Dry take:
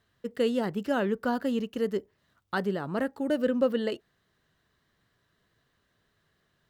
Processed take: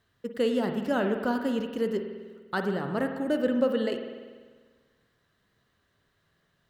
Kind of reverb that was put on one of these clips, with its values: spring tank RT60 1.5 s, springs 49 ms, chirp 40 ms, DRR 5.5 dB

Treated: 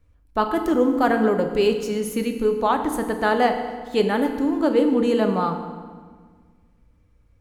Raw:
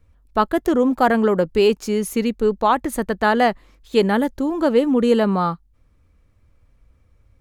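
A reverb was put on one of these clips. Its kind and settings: FDN reverb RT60 1.6 s, low-frequency decay 1.35×, high-frequency decay 0.8×, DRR 5 dB; trim -4 dB

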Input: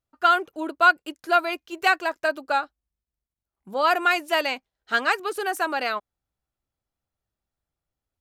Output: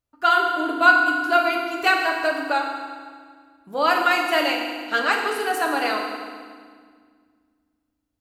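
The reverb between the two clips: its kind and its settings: FDN reverb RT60 1.8 s, low-frequency decay 1.55×, high-frequency decay 0.9×, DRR 0 dB

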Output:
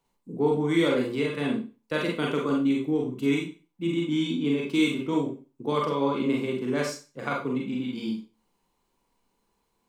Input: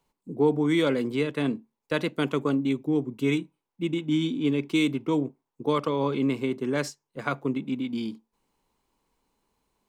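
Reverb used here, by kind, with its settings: Schroeder reverb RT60 0.33 s, combs from 32 ms, DRR -1.5 dB; trim -3 dB

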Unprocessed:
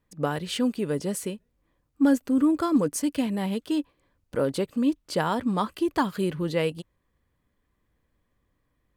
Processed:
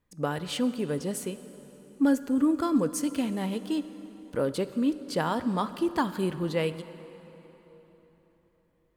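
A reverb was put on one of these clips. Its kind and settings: plate-style reverb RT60 4 s, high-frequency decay 0.75×, DRR 12.5 dB; trim -2.5 dB

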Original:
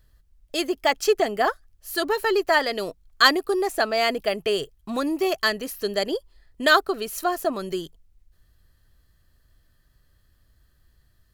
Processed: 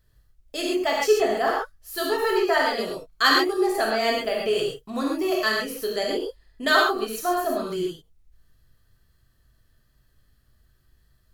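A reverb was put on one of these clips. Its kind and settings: gated-style reverb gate 160 ms flat, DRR -3.5 dB; trim -5.5 dB

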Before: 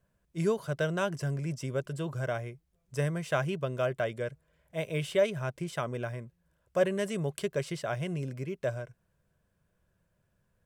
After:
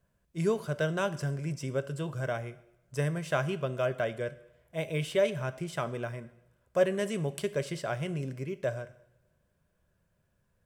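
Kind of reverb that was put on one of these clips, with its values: two-slope reverb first 0.75 s, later 2.8 s, from -27 dB, DRR 12.5 dB

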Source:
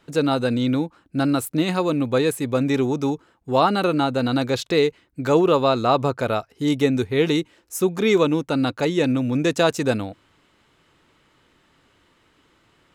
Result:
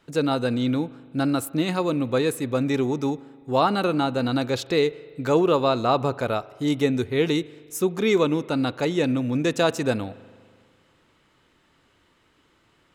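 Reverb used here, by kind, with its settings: spring tank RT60 1.9 s, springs 40 ms, chirp 50 ms, DRR 19 dB; trim -2.5 dB

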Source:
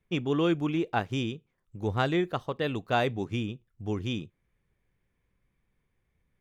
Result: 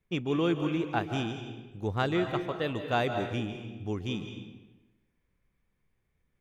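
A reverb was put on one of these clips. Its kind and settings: algorithmic reverb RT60 1.1 s, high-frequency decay 0.8×, pre-delay 120 ms, DRR 6.5 dB; trim -2 dB

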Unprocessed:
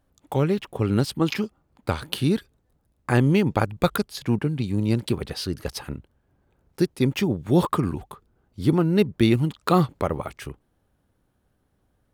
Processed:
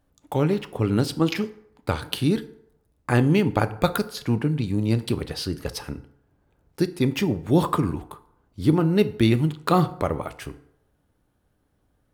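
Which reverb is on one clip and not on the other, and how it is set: FDN reverb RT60 0.73 s, low-frequency decay 0.75×, high-frequency decay 0.6×, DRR 11 dB

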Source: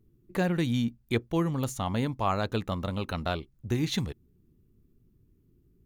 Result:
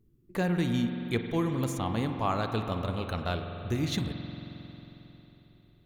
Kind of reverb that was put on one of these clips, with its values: spring tank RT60 3.8 s, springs 45 ms, chirp 20 ms, DRR 5.5 dB; trim -2 dB

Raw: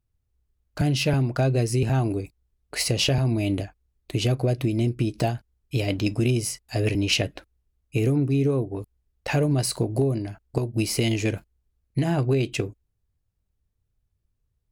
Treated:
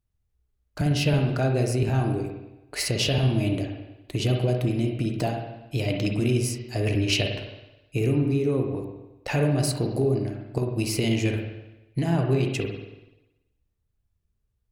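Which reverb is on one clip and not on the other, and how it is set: spring tank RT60 1 s, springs 48/53 ms, chirp 20 ms, DRR 2.5 dB; trim -2.5 dB

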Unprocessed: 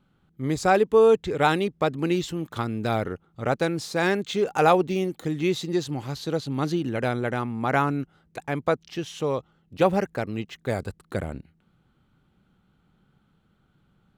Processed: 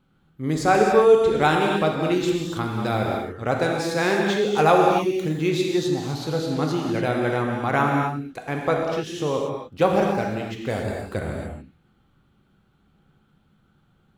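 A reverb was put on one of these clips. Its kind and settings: gated-style reverb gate 310 ms flat, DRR -0.5 dB

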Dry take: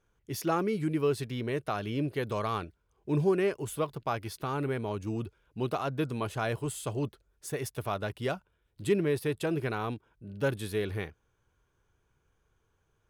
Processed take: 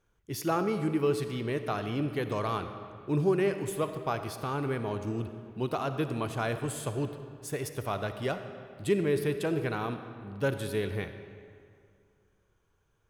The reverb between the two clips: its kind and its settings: algorithmic reverb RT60 2.3 s, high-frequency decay 0.7×, pre-delay 15 ms, DRR 8.5 dB

